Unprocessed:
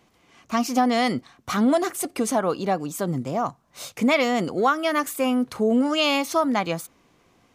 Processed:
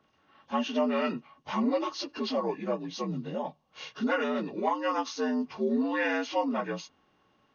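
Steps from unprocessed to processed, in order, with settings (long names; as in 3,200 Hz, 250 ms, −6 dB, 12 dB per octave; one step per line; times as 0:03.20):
partials spread apart or drawn together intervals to 80%
hollow resonant body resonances 1,100/2,800 Hz, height 15 dB, ringing for 65 ms
level −6.5 dB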